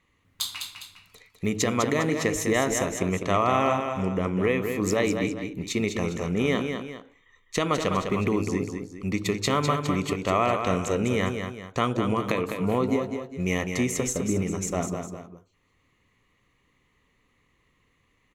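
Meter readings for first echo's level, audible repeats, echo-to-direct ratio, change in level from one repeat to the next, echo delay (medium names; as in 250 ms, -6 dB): -6.5 dB, 2, -6.0 dB, -7.5 dB, 203 ms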